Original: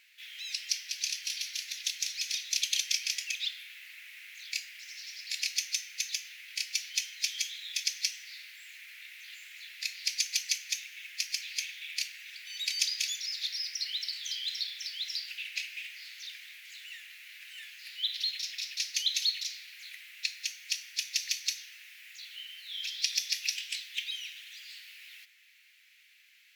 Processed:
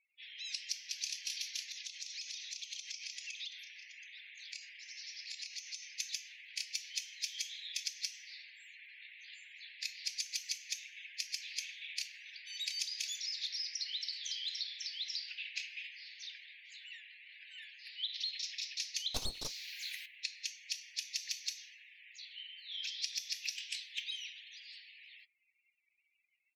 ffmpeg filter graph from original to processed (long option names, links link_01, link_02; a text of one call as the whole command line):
ffmpeg -i in.wav -filter_complex "[0:a]asettb=1/sr,asplit=3[link_01][link_02][link_03];[link_01]atrim=end=1.624[link_04];[link_02]atrim=start=1.62:end=5.96,asetpts=PTS-STARTPTS,afade=type=in:duration=0.004:curve=qsin,afade=type=out:start_time=4.336:duration=0.004:curve=qsin,acompressor=threshold=-36dB:ratio=16:attack=3.2:release=140:knee=1:detection=peak,aecho=1:1:727:0.282,atrim=end_sample=191394[link_05];[link_03]atrim=start=5.956[link_06];[link_04][link_05]acrossfade=duration=0.004:curve1=hsin:curve2=qsin[link_07];[link_07][link_06]acrossfade=duration=0.004:curve1=qsin:curve2=hsin,asettb=1/sr,asplit=3[link_08][link_09][link_10];[link_08]atrim=end=19.144[link_11];[link_09]atrim=start=19.14:end=20.06,asetpts=PTS-STARTPTS,afade=type=in:duration=0.004:curve=qsin,afade=type=out:start_time=0.916:duration=0.004:curve=qsin,highshelf=frequency=2100:gain=11,aeval=exprs='clip(val(0),-1,0.0473)':channel_layout=same[link_12];[link_10]atrim=start=20.056[link_13];[link_11][link_12]acrossfade=duration=0.004:curve1=hsin:curve2=qsin[link_14];[link_14][link_13]acrossfade=duration=0.004:curve1=qsin:curve2=hsin,afftdn=noise_reduction=36:noise_floor=-52,firequalizer=gain_entry='entry(840,0);entry(1800,-13);entry(5100,-11);entry(14000,-13)':delay=0.05:min_phase=1,acompressor=threshold=-43dB:ratio=6,volume=8.5dB" out.wav